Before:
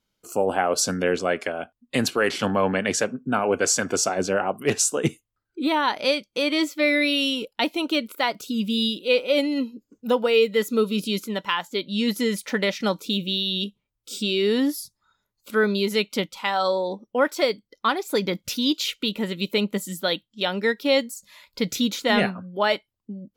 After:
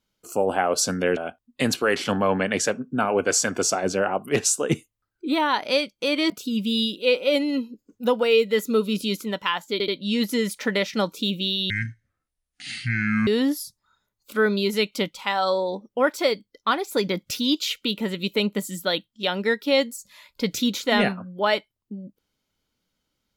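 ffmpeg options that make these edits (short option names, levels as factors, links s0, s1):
-filter_complex "[0:a]asplit=7[s0][s1][s2][s3][s4][s5][s6];[s0]atrim=end=1.172[s7];[s1]atrim=start=1.508:end=6.642[s8];[s2]atrim=start=8.328:end=11.832[s9];[s3]atrim=start=11.748:end=11.832[s10];[s4]atrim=start=11.748:end=13.574[s11];[s5]atrim=start=13.57:end=14.45,asetpts=PTS-STARTPTS,asetrate=24696,aresample=44100[s12];[s6]atrim=start=14.446[s13];[s7][s8]acrossfade=d=0.004:c1=hsin:c2=hsin[s14];[s14][s9]acrossfade=d=0.004:c1=hsin:c2=hsin[s15];[s15][s10]acrossfade=d=0.004:c1=hsin:c2=hsin[s16];[s16][s11]acrossfade=d=0.004:c1=hsin:c2=hsin[s17];[s17][s12]acrossfade=d=0.004:c1=hsin:c2=hsin[s18];[s18][s13]acrossfade=d=0.004:c1=hsin:c2=hsin"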